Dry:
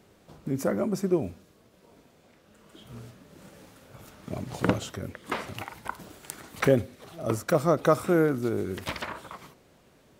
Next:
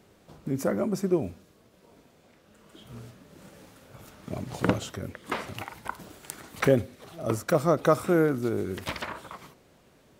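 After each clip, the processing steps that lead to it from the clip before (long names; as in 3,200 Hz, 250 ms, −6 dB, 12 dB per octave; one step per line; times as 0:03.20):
no processing that can be heard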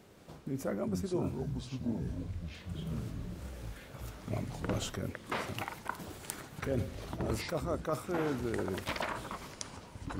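reversed playback
downward compressor 6 to 1, threshold −32 dBFS, peak gain reduction 16 dB
reversed playback
delay with pitch and tempo change per echo 173 ms, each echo −7 semitones, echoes 3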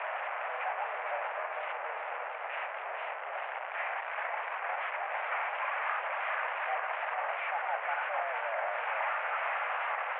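linear delta modulator 16 kbit/s, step −26 dBFS
single-sideband voice off tune +230 Hz 410–2,200 Hz
feedback echo with a swinging delay time 450 ms, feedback 60%, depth 75 cents, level −5 dB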